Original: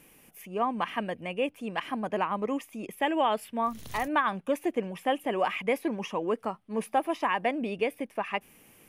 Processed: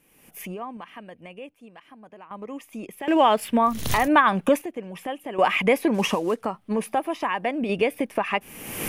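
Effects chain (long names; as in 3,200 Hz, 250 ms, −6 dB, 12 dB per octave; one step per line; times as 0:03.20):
0:05.94–0:06.41: variable-slope delta modulation 64 kbit/s
camcorder AGC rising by 43 dB per second
0:02.95–0:03.50: slack as between gear wheels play −50 dBFS
sample-and-hold tremolo 1.3 Hz, depth 95%
level +8.5 dB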